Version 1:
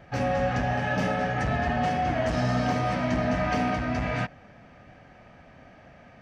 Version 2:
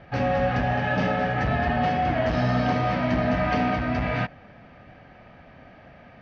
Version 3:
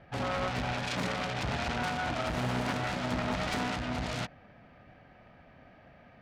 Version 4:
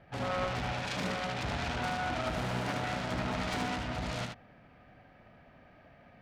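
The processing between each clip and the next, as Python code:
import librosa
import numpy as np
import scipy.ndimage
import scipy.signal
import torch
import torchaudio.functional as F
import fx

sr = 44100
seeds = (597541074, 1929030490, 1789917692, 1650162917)

y1 = scipy.signal.sosfilt(scipy.signal.butter(4, 4700.0, 'lowpass', fs=sr, output='sos'), x)
y1 = F.gain(torch.from_numpy(y1), 2.5).numpy()
y2 = fx.self_delay(y1, sr, depth_ms=0.57)
y2 = F.gain(torch.from_numpy(y2), -7.5).numpy()
y3 = y2 + 10.0 ** (-4.5 / 20.0) * np.pad(y2, (int(75 * sr / 1000.0), 0))[:len(y2)]
y3 = F.gain(torch.from_numpy(y3), -3.0).numpy()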